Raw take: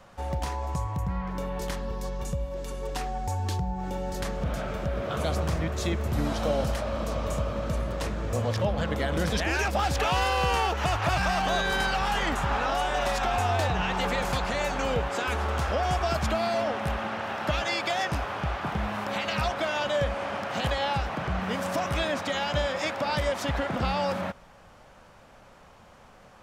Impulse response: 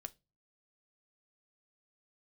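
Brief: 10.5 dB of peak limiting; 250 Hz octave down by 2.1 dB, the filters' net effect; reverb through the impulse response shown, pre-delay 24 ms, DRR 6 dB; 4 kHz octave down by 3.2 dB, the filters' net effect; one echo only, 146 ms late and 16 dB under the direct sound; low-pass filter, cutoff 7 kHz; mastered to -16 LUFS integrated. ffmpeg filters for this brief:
-filter_complex "[0:a]lowpass=7000,equalizer=f=250:t=o:g=-3,equalizer=f=4000:t=o:g=-4,alimiter=level_in=1.12:limit=0.0631:level=0:latency=1,volume=0.891,aecho=1:1:146:0.158,asplit=2[s0][s1];[1:a]atrim=start_sample=2205,adelay=24[s2];[s1][s2]afir=irnorm=-1:irlink=0,volume=0.891[s3];[s0][s3]amix=inputs=2:normalize=0,volume=7.08"

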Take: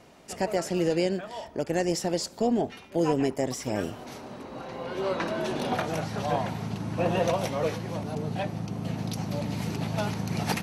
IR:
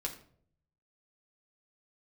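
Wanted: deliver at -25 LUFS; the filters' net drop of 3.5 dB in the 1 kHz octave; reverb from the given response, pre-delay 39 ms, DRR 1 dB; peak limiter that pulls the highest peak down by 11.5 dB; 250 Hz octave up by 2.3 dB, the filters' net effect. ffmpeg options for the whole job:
-filter_complex "[0:a]equalizer=f=250:t=o:g=3.5,equalizer=f=1000:t=o:g=-5.5,alimiter=level_in=1.12:limit=0.0631:level=0:latency=1,volume=0.891,asplit=2[s0][s1];[1:a]atrim=start_sample=2205,adelay=39[s2];[s1][s2]afir=irnorm=-1:irlink=0,volume=0.794[s3];[s0][s3]amix=inputs=2:normalize=0,volume=2.24"

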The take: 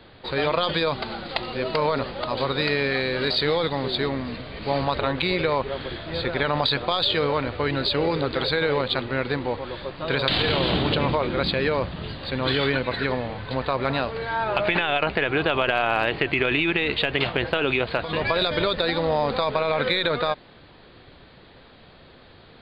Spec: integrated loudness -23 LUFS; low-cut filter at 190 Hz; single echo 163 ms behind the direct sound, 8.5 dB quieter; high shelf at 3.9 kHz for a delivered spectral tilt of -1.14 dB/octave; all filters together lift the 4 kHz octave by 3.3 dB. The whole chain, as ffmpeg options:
-af "highpass=190,highshelf=f=3900:g=-6,equalizer=f=4000:t=o:g=7,aecho=1:1:163:0.376,volume=0.944"

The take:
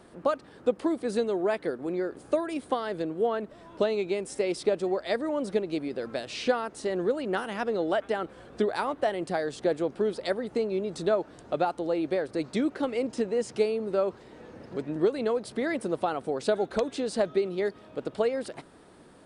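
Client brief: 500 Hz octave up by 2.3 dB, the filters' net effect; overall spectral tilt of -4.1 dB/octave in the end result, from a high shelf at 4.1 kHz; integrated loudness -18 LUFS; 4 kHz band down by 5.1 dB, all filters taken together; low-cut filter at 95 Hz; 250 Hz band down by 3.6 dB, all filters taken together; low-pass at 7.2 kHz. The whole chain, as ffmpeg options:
-af "highpass=95,lowpass=7200,equalizer=f=250:t=o:g=-8,equalizer=f=500:t=o:g=5,equalizer=f=4000:t=o:g=-9,highshelf=f=4100:g=5,volume=3.16"

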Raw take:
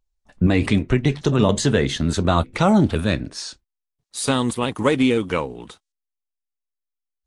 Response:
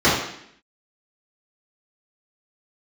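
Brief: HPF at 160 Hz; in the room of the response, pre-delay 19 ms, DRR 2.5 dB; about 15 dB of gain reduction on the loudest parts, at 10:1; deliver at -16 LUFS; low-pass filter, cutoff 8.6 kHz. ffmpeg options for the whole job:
-filter_complex "[0:a]highpass=160,lowpass=8600,acompressor=threshold=0.0355:ratio=10,asplit=2[s0][s1];[1:a]atrim=start_sample=2205,adelay=19[s2];[s1][s2]afir=irnorm=-1:irlink=0,volume=0.0531[s3];[s0][s3]amix=inputs=2:normalize=0,volume=5.31"

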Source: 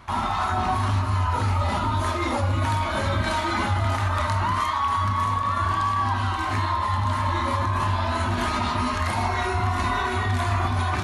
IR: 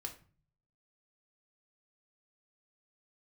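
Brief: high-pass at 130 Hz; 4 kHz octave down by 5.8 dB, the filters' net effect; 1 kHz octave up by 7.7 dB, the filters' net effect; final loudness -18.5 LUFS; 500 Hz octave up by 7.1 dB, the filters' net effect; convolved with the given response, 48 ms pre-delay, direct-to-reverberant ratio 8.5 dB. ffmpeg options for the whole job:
-filter_complex "[0:a]highpass=130,equalizer=f=500:t=o:g=7,equalizer=f=1000:t=o:g=7.5,equalizer=f=4000:t=o:g=-8,asplit=2[s0][s1];[1:a]atrim=start_sample=2205,adelay=48[s2];[s1][s2]afir=irnorm=-1:irlink=0,volume=0.501[s3];[s0][s3]amix=inputs=2:normalize=0"

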